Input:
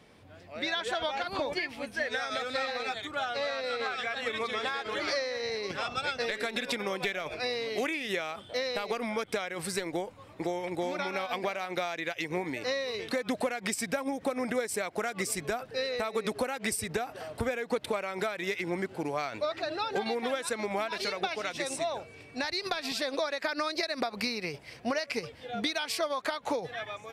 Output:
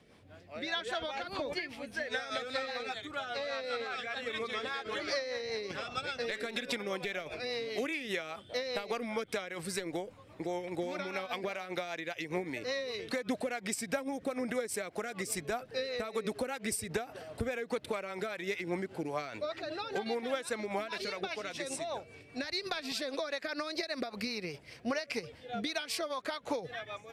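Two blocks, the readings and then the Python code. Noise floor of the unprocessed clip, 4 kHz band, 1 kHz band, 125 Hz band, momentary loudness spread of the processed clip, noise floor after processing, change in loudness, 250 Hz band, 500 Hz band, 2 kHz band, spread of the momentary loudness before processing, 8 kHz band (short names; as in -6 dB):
-52 dBFS, -4.0 dB, -5.5 dB, -3.0 dB, 4 LU, -56 dBFS, -4.0 dB, -3.0 dB, -4.0 dB, -4.5 dB, 3 LU, -3.5 dB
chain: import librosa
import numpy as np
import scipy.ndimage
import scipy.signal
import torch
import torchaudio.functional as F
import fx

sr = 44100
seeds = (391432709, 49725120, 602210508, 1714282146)

y = fx.rotary(x, sr, hz=5.0)
y = y * librosa.db_to_amplitude(-1.5)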